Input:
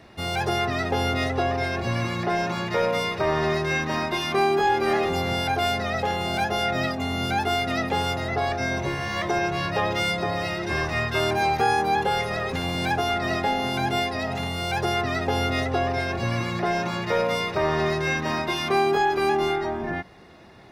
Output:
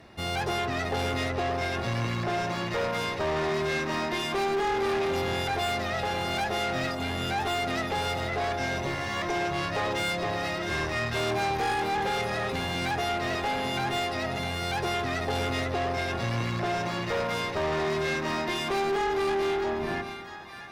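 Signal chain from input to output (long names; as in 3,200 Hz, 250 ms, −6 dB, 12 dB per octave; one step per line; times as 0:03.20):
echo with a time of its own for lows and highs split 940 Hz, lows 112 ms, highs 657 ms, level −10.5 dB
tube saturation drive 24 dB, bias 0.5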